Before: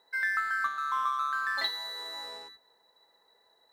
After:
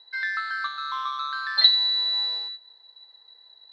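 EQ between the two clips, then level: resonant low-pass 4.1 kHz, resonance Q 7.7; peaking EQ 240 Hz -8 dB 2.2 oct; 0.0 dB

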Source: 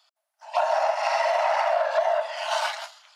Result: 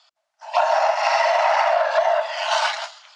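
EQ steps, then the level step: low-pass 7.4 kHz 24 dB/octave; dynamic bell 470 Hz, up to -5 dB, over -37 dBFS, Q 1.4; +6.5 dB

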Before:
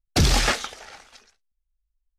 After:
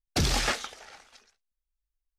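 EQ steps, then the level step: bass shelf 150 Hz -3.5 dB; -5.5 dB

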